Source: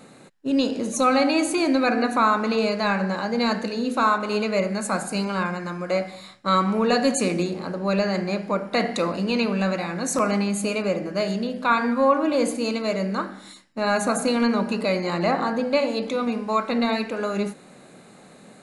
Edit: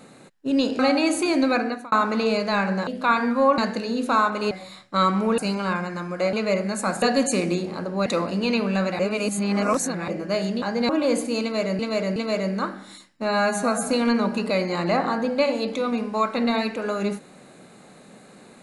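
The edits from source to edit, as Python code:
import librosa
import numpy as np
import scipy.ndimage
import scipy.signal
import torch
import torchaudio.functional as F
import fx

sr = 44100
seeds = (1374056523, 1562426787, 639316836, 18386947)

y = fx.edit(x, sr, fx.cut(start_s=0.79, length_s=0.32),
    fx.fade_out_span(start_s=1.84, length_s=0.4),
    fx.swap(start_s=3.19, length_s=0.27, other_s=11.48, other_length_s=0.71),
    fx.swap(start_s=4.39, length_s=0.69, other_s=6.03, other_length_s=0.87),
    fx.cut(start_s=7.94, length_s=0.98),
    fx.reverse_span(start_s=9.85, length_s=1.09),
    fx.repeat(start_s=12.72, length_s=0.37, count=3),
    fx.stretch_span(start_s=13.81, length_s=0.43, factor=1.5), tone=tone)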